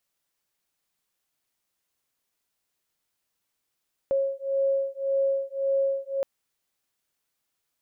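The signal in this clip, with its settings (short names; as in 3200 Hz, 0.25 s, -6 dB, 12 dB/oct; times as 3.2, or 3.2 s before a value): beating tones 545 Hz, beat 1.8 Hz, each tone -26 dBFS 2.12 s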